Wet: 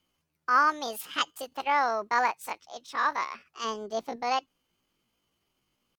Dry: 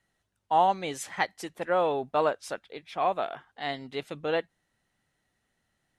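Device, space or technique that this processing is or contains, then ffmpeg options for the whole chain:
chipmunk voice: -filter_complex "[0:a]asetrate=70004,aresample=44100,atempo=0.629961,asettb=1/sr,asplit=3[s0][s1][s2];[s0]atrim=end=3.644[s3];[s1]atrim=start=3.64:end=4.16,asetpts=PTS-STARTPTS,afade=t=in:d=0.004:c=qsin,afade=t=out:st=0.516:d=0.004:c=qsin,tiltshelf=f=1200:g=5.5[s4];[s2]atrim=start=4.156[s5];[s3][s4]acrossfade=d=0.004:c1=hsin:c2=qsin[s6];[s6][s5]acrossfade=d=0.004:c1=qsin:c2=hsin"

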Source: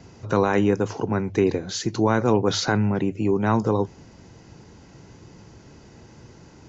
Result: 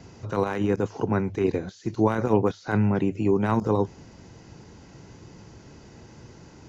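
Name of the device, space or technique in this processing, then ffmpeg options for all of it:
de-esser from a sidechain: -filter_complex "[0:a]asplit=2[s0][s1];[s1]highpass=f=4300:w=0.5412,highpass=f=4300:w=1.3066,apad=whole_len=294999[s2];[s0][s2]sidechaincompress=threshold=0.00224:ratio=6:attack=1.2:release=20"

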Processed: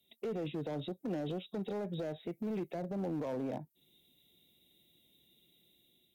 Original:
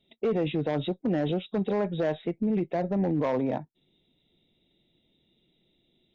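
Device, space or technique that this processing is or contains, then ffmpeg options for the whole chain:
FM broadcast chain: -filter_complex "[0:a]highpass=49,dynaudnorm=f=210:g=5:m=1.78,acrossover=split=360|840[s0][s1][s2];[s0]acompressor=threshold=0.0398:ratio=4[s3];[s1]acompressor=threshold=0.0398:ratio=4[s4];[s2]acompressor=threshold=0.00398:ratio=4[s5];[s3][s4][s5]amix=inputs=3:normalize=0,aemphasis=mode=production:type=50fm,alimiter=limit=0.0944:level=0:latency=1:release=53,asoftclip=type=hard:threshold=0.0708,lowpass=f=15000:w=0.5412,lowpass=f=15000:w=1.3066,aemphasis=mode=production:type=50fm,volume=0.376"

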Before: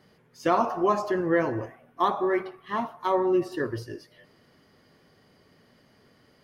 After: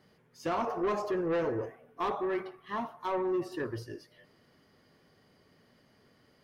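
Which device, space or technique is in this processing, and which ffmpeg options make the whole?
saturation between pre-emphasis and de-emphasis: -filter_complex "[0:a]asettb=1/sr,asplit=3[s0][s1][s2];[s0]atrim=end=0.674[s3];[s1]atrim=start=0.67:end=2.17,asetpts=PTS-STARTPTS,afade=t=in:d=0.004:c=qsin,afade=t=out:st=1.496:d=0.004:c=qsin,equalizer=f=450:t=o:w=0.27:g=13[s4];[s2]atrim=start=2.166[s5];[s3][s4]acrossfade=d=0.004:c1=hsin:c2=qsin[s6];[s6][s5]acrossfade=d=0.004:c1=qsin:c2=hsin,highshelf=f=4700:g=11.5,asoftclip=type=tanh:threshold=0.0891,highshelf=f=4700:g=-11.5,volume=0.596"

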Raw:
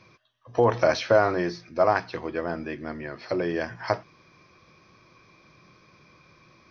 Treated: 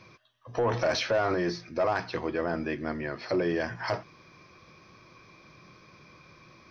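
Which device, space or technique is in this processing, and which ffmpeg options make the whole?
soft clipper into limiter: -af "asoftclip=type=tanh:threshold=0.2,alimiter=limit=0.0841:level=0:latency=1:release=13,volume=1.26"

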